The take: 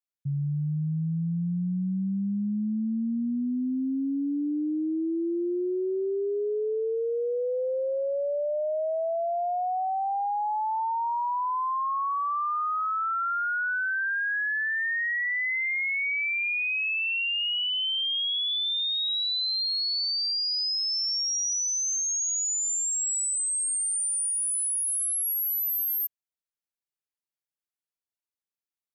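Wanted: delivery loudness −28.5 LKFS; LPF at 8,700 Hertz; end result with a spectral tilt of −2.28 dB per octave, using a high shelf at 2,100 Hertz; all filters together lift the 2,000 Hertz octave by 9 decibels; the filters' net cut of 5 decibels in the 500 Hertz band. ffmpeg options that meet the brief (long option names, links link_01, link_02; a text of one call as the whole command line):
ffmpeg -i in.wav -af "lowpass=8700,equalizer=frequency=500:width_type=o:gain=-7.5,equalizer=frequency=2000:width_type=o:gain=7.5,highshelf=frequency=2100:gain=7,volume=-8.5dB" out.wav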